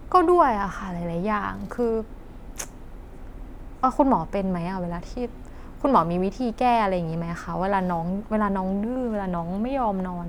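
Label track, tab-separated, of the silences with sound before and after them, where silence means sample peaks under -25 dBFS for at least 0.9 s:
2.630000	3.830000	silence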